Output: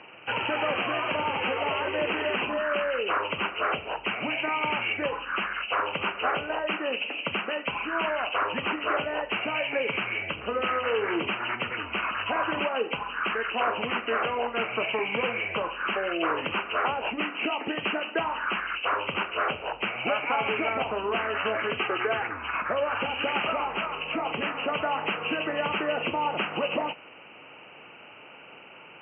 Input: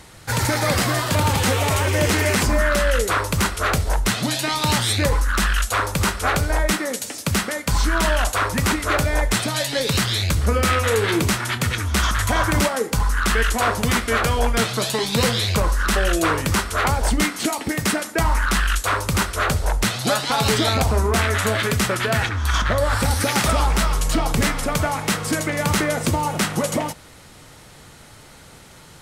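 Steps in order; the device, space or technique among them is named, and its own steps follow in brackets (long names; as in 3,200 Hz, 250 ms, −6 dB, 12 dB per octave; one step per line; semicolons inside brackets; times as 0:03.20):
0:21.80–0:22.22: comb filter 2.5 ms, depth 65%
hearing aid with frequency lowering (hearing-aid frequency compression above 1,900 Hz 4 to 1; downward compressor 2.5 to 1, threshold −22 dBFS, peak gain reduction 6.5 dB; loudspeaker in its box 350–5,500 Hz, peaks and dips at 2,000 Hz −10 dB, 3,200 Hz −8 dB, 4,700 Hz −5 dB)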